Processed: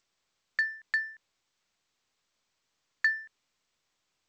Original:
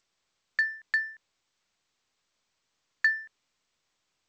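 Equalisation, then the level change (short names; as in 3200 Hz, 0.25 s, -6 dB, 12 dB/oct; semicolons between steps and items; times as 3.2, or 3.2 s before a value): dynamic EQ 580 Hz, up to -6 dB, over -44 dBFS, Q 0.79; -1.0 dB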